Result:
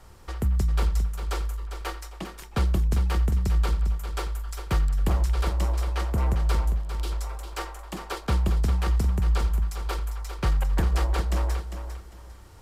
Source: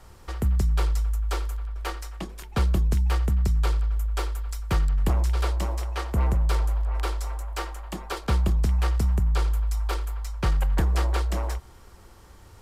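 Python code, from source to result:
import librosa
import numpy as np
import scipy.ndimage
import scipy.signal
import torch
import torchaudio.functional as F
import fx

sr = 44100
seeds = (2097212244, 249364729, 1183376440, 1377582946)

p1 = fx.band_shelf(x, sr, hz=1000.0, db=-11.5, octaves=2.6, at=(6.65, 7.1), fade=0.02)
p2 = p1 + fx.echo_feedback(p1, sr, ms=401, feedback_pct=26, wet_db=-9.0, dry=0)
y = p2 * librosa.db_to_amplitude(-1.0)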